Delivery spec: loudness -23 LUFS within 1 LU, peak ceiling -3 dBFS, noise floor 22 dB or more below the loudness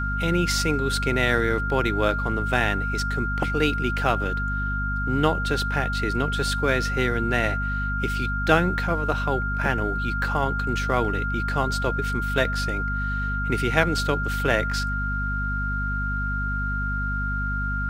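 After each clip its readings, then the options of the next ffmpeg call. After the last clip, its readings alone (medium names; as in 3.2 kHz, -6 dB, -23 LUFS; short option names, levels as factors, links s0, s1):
hum 50 Hz; highest harmonic 250 Hz; hum level -25 dBFS; steady tone 1.4 kHz; tone level -27 dBFS; loudness -24.5 LUFS; peak level -3.0 dBFS; loudness target -23.0 LUFS
-> -af "bandreject=f=50:t=h:w=6,bandreject=f=100:t=h:w=6,bandreject=f=150:t=h:w=6,bandreject=f=200:t=h:w=6,bandreject=f=250:t=h:w=6"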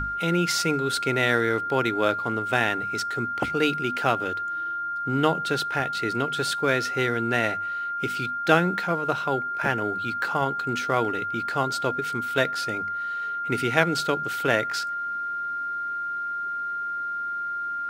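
hum not found; steady tone 1.4 kHz; tone level -27 dBFS
-> -af "bandreject=f=1400:w=30"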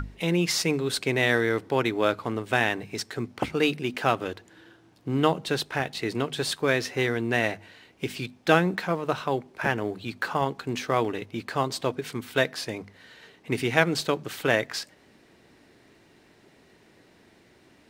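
steady tone not found; loudness -27.0 LUFS; peak level -4.5 dBFS; loudness target -23.0 LUFS
-> -af "volume=1.58,alimiter=limit=0.708:level=0:latency=1"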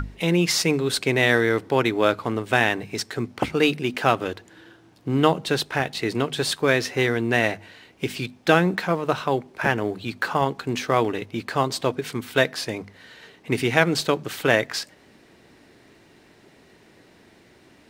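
loudness -23.0 LUFS; peak level -3.0 dBFS; noise floor -54 dBFS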